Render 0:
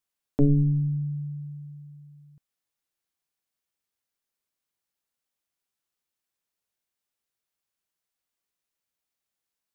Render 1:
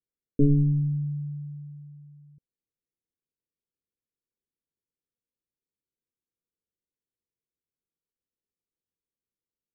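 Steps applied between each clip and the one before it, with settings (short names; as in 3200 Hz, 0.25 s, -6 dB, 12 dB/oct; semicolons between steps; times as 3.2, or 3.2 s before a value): steep low-pass 530 Hz 96 dB/oct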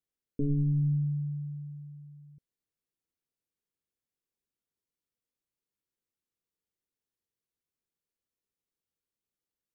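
limiter -23 dBFS, peak gain reduction 10.5 dB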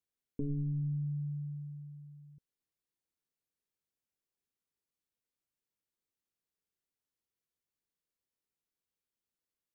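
compressor 2.5:1, threshold -32 dBFS, peak gain reduction 5 dB; gain -2.5 dB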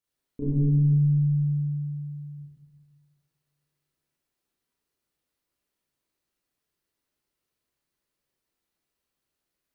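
reverb RT60 1.5 s, pre-delay 28 ms, DRR -10.5 dB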